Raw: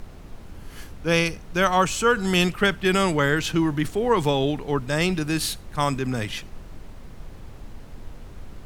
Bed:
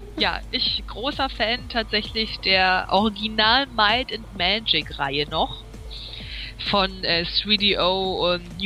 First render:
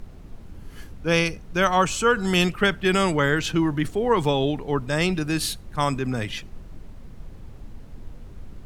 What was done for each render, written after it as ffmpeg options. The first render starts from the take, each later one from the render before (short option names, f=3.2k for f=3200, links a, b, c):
-af "afftdn=nr=6:nf=-42"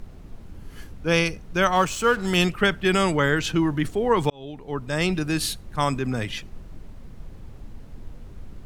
-filter_complex "[0:a]asettb=1/sr,asplit=3[a][b][c];[a]atrim=end=1.754[d];[b]atrim=start=1.75:end=2.38,asetpts=PTS-STARTPTS,afade=t=in:d=0.004:c=qsin,afade=t=out:st=0.626:d=0.004:c=qsin,aeval=exprs='sgn(val(0))*max(abs(val(0))-0.0133,0)':c=same[e];[c]atrim=start=2.376[f];[d][e]acrossfade=d=0.004:c1=hsin:c2=qsin[g];[g][f]acrossfade=d=0.004:c1=qsin:c2=hsin,asplit=2[h][i];[h]atrim=end=4.3,asetpts=PTS-STARTPTS,afade=t=out:st=4.296:d=0.004:c=hsin[j];[i]atrim=start=4.3,asetpts=PTS-STARTPTS,afade=t=in:d=0.81[k];[j][k]concat=n=2:v=0:a=1"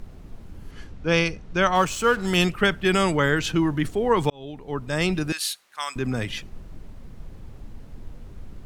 -filter_complex "[0:a]asettb=1/sr,asplit=3[a][b][c];[a]atrim=end=0.714[d];[b]atrim=start=0.71:end=1.75,asetpts=PTS-STARTPTS,afade=t=in:d=0.004:c=qsin,afade=t=out:st=1.036:d=0.004:c=qsin,lowpass=6.3k[e];[c]atrim=start=1.746[f];[d][e]acrossfade=d=0.004:c1=hsin:c2=qsin[g];[g][f]acrossfade=d=0.004:c1=qsin:c2=hsin,asettb=1/sr,asplit=3[h][i][j];[h]atrim=end=5.324[k];[i]atrim=start=5.32:end=5.96,asetpts=PTS-STARTPTS,afade=t=in:d=0.004:c=qsin,afade=t=out:st=0.636:d=0.004:c=qsin,highpass=1.4k[l];[j]atrim=start=5.956[m];[k][l]acrossfade=d=0.004:c1=hsin:c2=qsin[n];[n][m]acrossfade=d=0.004:c1=qsin:c2=hsin"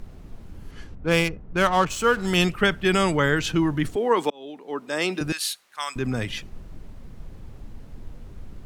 -filter_complex "[0:a]asplit=3[a][b][c];[a]afade=t=out:st=0.94:d=0.02[d];[b]adynamicsmooth=sensitivity=3:basefreq=1.3k,afade=t=in:st=0.94:d=0.02,afade=t=out:st=1.89:d=0.02[e];[c]afade=t=in:st=1.89:d=0.02[f];[d][e][f]amix=inputs=3:normalize=0,asettb=1/sr,asplit=3[g][h][i];[g]atrim=end=3.964[j];[h]atrim=start=3.96:end=5.21,asetpts=PTS-STARTPTS,afade=t=in:d=0.004:c=qsin,afade=t=out:st=1.246:d=0.004:c=qsin,highpass=f=240:w=0.5412,highpass=f=240:w=1.3066[k];[i]atrim=start=5.206[l];[j][k]acrossfade=d=0.004:c1=hsin:c2=qsin[m];[m][l]acrossfade=d=0.004:c1=qsin:c2=hsin"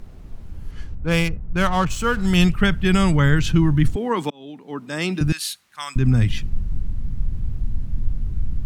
-af "asubboost=boost=8:cutoff=170"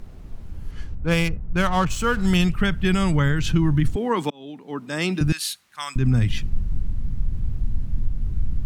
-af "alimiter=limit=-10dB:level=0:latency=1:release=180"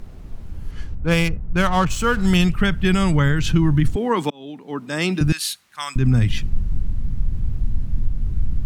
-af "volume=2.5dB"